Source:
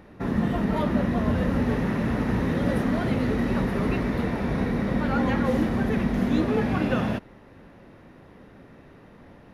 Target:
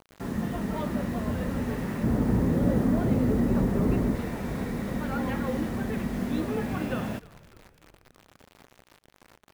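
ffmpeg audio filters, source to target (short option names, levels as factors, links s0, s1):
-filter_complex "[0:a]asettb=1/sr,asplit=3[s0][s1][s2];[s0]atrim=end=2.034[s3];[s1]atrim=start=2.03:end=4.15,asetpts=PTS-STARTPTS,afade=t=in:d=0.004:c=qsin,afade=t=out:st=2.116:d=0.004:c=qsin,tiltshelf=f=1200:g=7.5[s4];[s2]atrim=start=4.146[s5];[s3][s4]acrossfade=d=0.004:c1=hsin:c2=qsin[s6];[s6][s5]acrossfade=d=0.004:c1=qsin:c2=hsin,acrusher=bits=6:mix=0:aa=0.000001,asplit=5[s7][s8][s9][s10][s11];[s8]adelay=303,afreqshift=-70,volume=0.075[s12];[s9]adelay=606,afreqshift=-140,volume=0.0422[s13];[s10]adelay=909,afreqshift=-210,volume=0.0234[s14];[s11]adelay=1212,afreqshift=-280,volume=0.0132[s15];[s7][s12][s13][s14][s15]amix=inputs=5:normalize=0,volume=0.501"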